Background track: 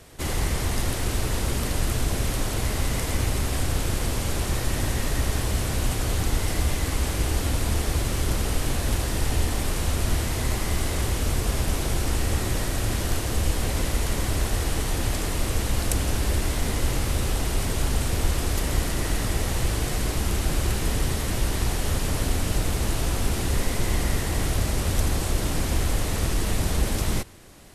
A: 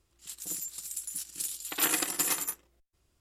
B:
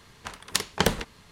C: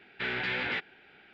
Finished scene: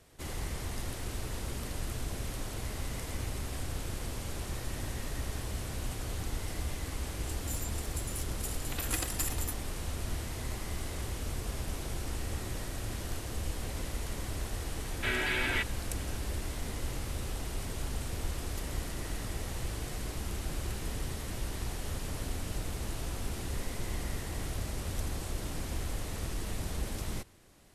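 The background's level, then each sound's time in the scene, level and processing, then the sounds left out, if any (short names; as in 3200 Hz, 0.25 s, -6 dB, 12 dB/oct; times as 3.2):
background track -12 dB
7 add A -5.5 dB + chopper 2.1 Hz, depth 65%, duty 80%
14.83 add C -0.5 dB + comb 3.1 ms, depth 56%
not used: B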